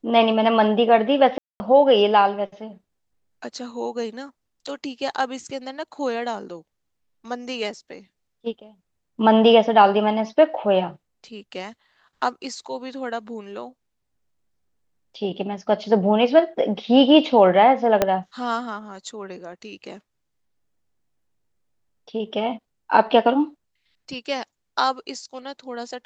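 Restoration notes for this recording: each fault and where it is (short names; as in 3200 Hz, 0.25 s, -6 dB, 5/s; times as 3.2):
1.38–1.6 gap 0.22 s
18.02 pop -4 dBFS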